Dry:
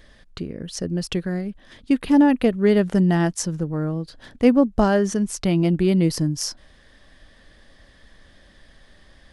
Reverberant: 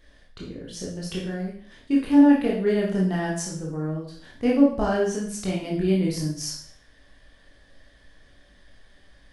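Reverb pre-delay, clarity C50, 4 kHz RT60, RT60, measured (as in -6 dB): 18 ms, 3.0 dB, 0.55 s, 0.50 s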